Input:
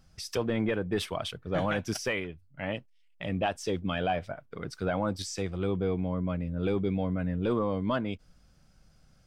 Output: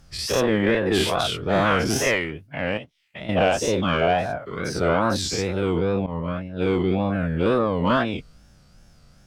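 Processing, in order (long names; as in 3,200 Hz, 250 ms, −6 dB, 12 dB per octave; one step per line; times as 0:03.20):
every bin's largest magnitude spread in time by 120 ms
tape wow and flutter 140 cents
0:02.77–0:03.29: downward compressor 3 to 1, threshold −40 dBFS, peak gain reduction 11 dB
0:06.06–0:06.84: downward expander −23 dBFS
harmonic generator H 4 −25 dB, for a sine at −11 dBFS
level +4.5 dB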